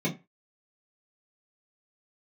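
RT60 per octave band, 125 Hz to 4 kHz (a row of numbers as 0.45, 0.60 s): 0.25, 0.25, 0.25, 0.25, 0.25, 0.20 s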